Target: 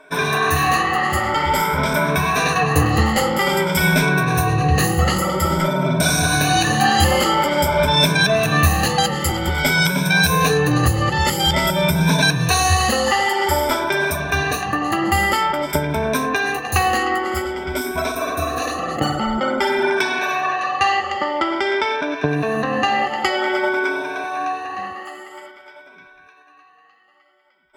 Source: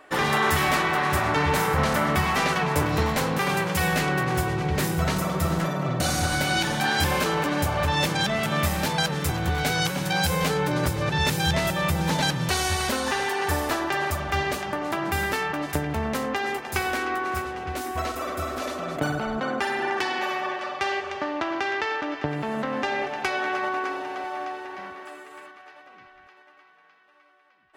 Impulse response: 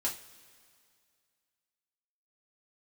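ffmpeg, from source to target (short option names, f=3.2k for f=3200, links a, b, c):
-af "afftfilt=real='re*pow(10,18/40*sin(2*PI*(1.6*log(max(b,1)*sr/1024/100)/log(2)-(0.5)*(pts-256)/sr)))':imag='im*pow(10,18/40*sin(2*PI*(1.6*log(max(b,1)*sr/1024/100)/log(2)-(0.5)*(pts-256)/sr)))':win_size=1024:overlap=0.75,dynaudnorm=f=160:g=31:m=6.5dB"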